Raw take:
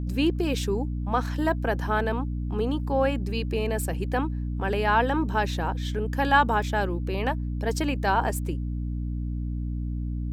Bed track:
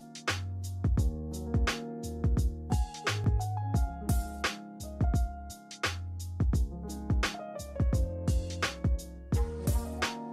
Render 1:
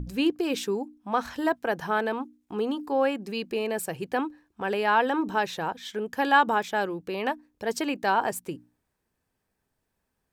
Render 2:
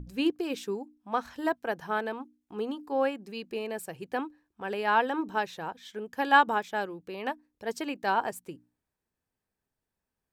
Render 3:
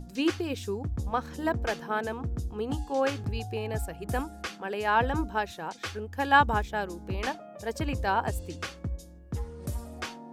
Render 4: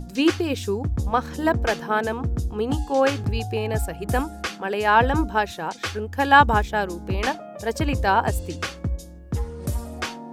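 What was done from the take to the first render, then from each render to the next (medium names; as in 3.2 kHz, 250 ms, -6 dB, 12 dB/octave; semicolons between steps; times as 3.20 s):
hum notches 60/120/180/240/300 Hz
upward expansion 1.5:1, over -33 dBFS
add bed track -5 dB
trim +7.5 dB; peak limiter -2 dBFS, peak gain reduction 2 dB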